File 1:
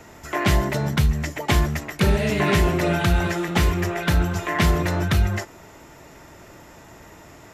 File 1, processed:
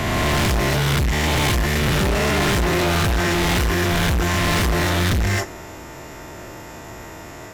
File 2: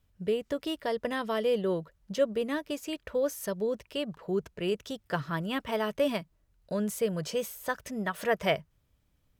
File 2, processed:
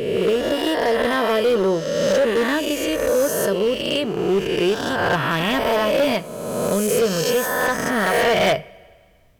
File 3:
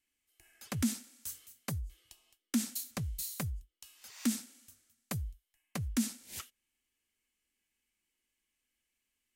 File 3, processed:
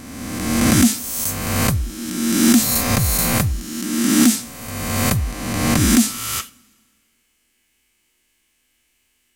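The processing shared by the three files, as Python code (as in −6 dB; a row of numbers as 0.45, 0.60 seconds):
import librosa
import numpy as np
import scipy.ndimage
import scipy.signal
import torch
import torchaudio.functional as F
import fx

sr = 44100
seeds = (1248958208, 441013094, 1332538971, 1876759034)

y = fx.spec_swells(x, sr, rise_s=1.69)
y = fx.rev_double_slope(y, sr, seeds[0], early_s=0.28, late_s=1.8, knee_db=-20, drr_db=12.5)
y = np.clip(10.0 ** (22.5 / 20.0) * y, -1.0, 1.0) / 10.0 ** (22.5 / 20.0)
y = y * 10.0 ** (-20 / 20.0) / np.sqrt(np.mean(np.square(y)))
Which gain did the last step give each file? +5.5, +9.0, +15.5 decibels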